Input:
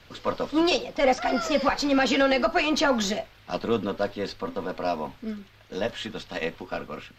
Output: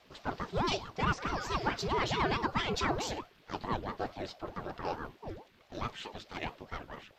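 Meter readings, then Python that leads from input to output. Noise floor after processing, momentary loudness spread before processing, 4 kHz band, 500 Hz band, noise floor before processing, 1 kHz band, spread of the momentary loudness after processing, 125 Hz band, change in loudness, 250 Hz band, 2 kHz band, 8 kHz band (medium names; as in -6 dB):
-63 dBFS, 13 LU, -9.0 dB, -13.0 dB, -54 dBFS, -6.0 dB, 13 LU, +1.5 dB, -9.5 dB, -12.5 dB, -8.5 dB, -9.0 dB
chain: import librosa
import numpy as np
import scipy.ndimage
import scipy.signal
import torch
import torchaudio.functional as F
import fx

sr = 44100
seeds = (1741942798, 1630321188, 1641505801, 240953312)

y = fx.ring_lfo(x, sr, carrier_hz=410.0, swing_pct=75, hz=4.6)
y = F.gain(torch.from_numpy(y), -6.5).numpy()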